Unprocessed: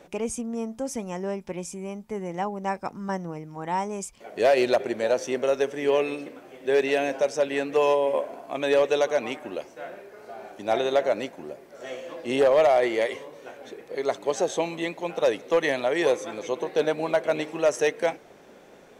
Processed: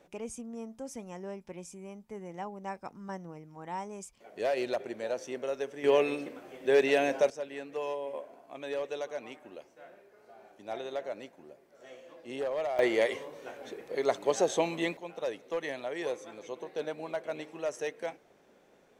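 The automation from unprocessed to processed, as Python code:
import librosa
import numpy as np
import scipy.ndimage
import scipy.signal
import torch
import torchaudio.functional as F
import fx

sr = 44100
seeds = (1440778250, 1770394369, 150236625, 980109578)

y = fx.gain(x, sr, db=fx.steps((0.0, -10.5), (5.84, -2.0), (7.3, -14.0), (12.79, -2.0), (14.97, -12.0)))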